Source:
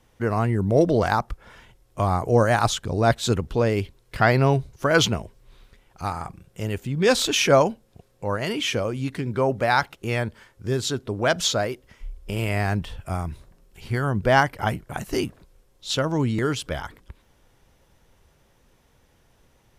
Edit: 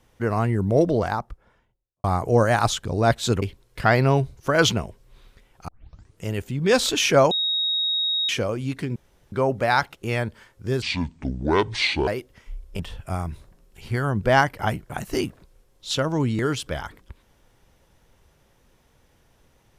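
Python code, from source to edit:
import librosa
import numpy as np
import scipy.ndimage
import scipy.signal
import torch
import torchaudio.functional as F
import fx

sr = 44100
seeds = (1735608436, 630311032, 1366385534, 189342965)

y = fx.studio_fade_out(x, sr, start_s=0.58, length_s=1.46)
y = fx.edit(y, sr, fx.cut(start_s=3.42, length_s=0.36),
    fx.tape_start(start_s=6.04, length_s=0.56),
    fx.bleep(start_s=7.67, length_s=0.98, hz=3770.0, db=-20.5),
    fx.insert_room_tone(at_s=9.32, length_s=0.36),
    fx.speed_span(start_s=10.82, length_s=0.79, speed=0.63),
    fx.cut(start_s=12.33, length_s=0.46), tone=tone)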